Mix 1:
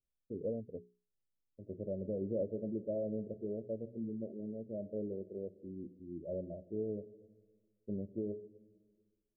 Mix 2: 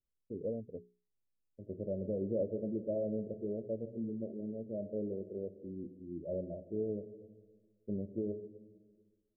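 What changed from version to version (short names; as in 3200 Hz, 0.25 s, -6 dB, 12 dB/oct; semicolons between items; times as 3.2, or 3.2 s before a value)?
second voice: send +6.5 dB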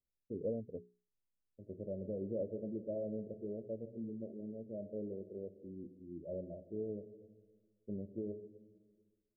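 second voice -4.5 dB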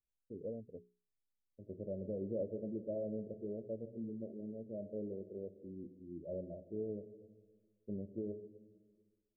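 first voice -5.5 dB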